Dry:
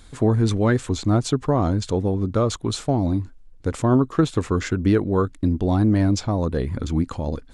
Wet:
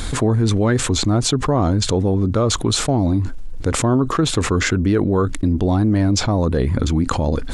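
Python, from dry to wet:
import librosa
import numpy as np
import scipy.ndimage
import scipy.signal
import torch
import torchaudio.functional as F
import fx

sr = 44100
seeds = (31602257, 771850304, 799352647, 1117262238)

y = fx.env_flatten(x, sr, amount_pct=70)
y = F.gain(torch.from_numpy(y), -1.0).numpy()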